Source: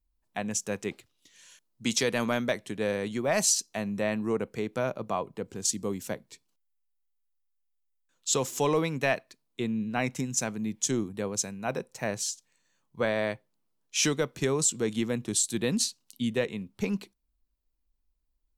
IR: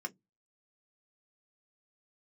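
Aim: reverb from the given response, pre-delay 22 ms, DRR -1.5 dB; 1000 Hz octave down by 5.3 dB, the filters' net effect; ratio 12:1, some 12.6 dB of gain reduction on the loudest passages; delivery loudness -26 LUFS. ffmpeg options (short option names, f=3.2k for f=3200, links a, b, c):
-filter_complex "[0:a]equalizer=f=1k:t=o:g=-7.5,acompressor=threshold=-35dB:ratio=12,asplit=2[a][b];[1:a]atrim=start_sample=2205,adelay=22[c];[b][c]afir=irnorm=-1:irlink=0,volume=1.5dB[d];[a][d]amix=inputs=2:normalize=0,volume=10.5dB"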